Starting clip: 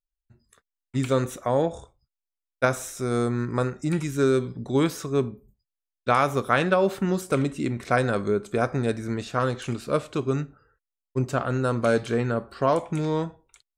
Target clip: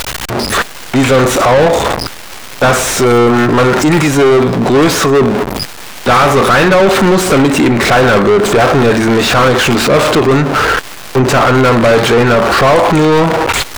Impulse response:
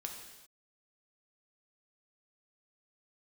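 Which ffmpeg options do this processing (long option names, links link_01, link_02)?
-filter_complex "[0:a]aeval=exprs='val(0)+0.5*0.0422*sgn(val(0))':channel_layout=same,asplit=2[link_01][link_02];[link_02]highpass=frequency=720:poles=1,volume=34dB,asoftclip=type=tanh:threshold=-5.5dB[link_03];[link_01][link_03]amix=inputs=2:normalize=0,lowpass=frequency=2300:poles=1,volume=-6dB,volume=5dB"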